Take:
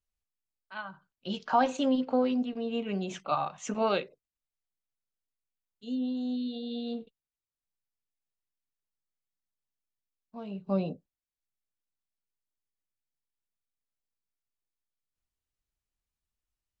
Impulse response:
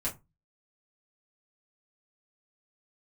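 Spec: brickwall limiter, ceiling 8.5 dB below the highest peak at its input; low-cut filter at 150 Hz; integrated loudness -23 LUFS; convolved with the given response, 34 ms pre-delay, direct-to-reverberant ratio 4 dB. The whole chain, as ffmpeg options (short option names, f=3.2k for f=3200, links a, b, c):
-filter_complex "[0:a]highpass=150,alimiter=limit=-21.5dB:level=0:latency=1,asplit=2[a][b];[1:a]atrim=start_sample=2205,adelay=34[c];[b][c]afir=irnorm=-1:irlink=0,volume=-8dB[d];[a][d]amix=inputs=2:normalize=0,volume=9dB"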